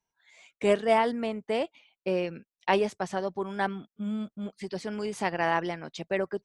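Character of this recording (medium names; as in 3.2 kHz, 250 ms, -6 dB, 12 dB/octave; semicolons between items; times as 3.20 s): noise floor -95 dBFS; spectral tilt -4.0 dB/octave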